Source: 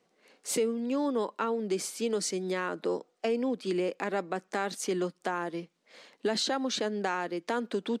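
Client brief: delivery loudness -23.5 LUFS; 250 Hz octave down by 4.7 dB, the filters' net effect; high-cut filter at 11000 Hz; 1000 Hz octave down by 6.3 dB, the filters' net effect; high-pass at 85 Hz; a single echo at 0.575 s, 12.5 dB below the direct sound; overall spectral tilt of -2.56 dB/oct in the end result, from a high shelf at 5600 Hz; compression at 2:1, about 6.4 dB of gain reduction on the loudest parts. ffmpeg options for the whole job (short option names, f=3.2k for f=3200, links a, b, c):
-af "highpass=85,lowpass=11k,equalizer=f=250:t=o:g=-5.5,equalizer=f=1k:t=o:g=-8.5,highshelf=f=5.6k:g=6,acompressor=threshold=-38dB:ratio=2,aecho=1:1:575:0.237,volume=15dB"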